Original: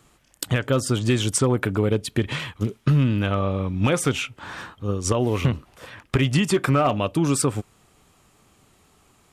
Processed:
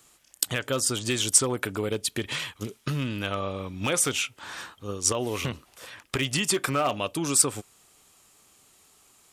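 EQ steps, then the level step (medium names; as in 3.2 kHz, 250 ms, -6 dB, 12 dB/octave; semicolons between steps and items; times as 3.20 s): tone controls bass -7 dB, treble +3 dB; treble shelf 2.8 kHz +9 dB; -5.5 dB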